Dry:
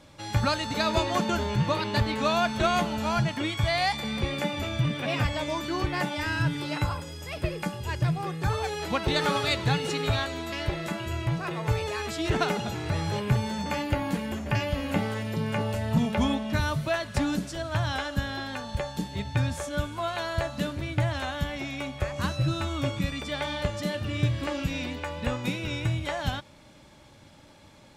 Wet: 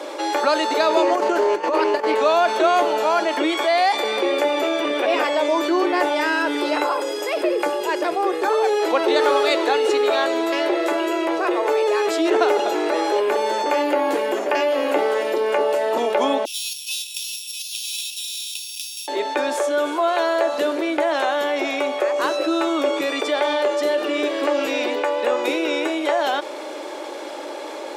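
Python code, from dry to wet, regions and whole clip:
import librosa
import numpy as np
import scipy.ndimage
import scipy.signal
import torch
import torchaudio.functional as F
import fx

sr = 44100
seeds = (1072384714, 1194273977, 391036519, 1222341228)

y = fx.chain(x, sr, fx.peak_eq(hz=3700.0, db=-13.5, octaves=0.27),
    fx.over_compress(threshold_db=-28.0, ratio=-0.5),
    fx.doppler_dist(depth_ms=0.14), at=(1.02, 2.15))
y = fx.chain(y, sr, fx.sample_sort(block=8),
    fx.cheby_ripple_highpass(hz=2500.0, ripple_db=9),
    fx.doppler_dist(depth_ms=0.86), at=(16.45, 19.08))
y = scipy.signal.sosfilt(scipy.signal.butter(8, 340.0, 'highpass', fs=sr, output='sos'), y)
y = fx.tilt_shelf(y, sr, db=7.0, hz=940.0)
y = fx.env_flatten(y, sr, amount_pct=50)
y = y * 10.0 ** (6.0 / 20.0)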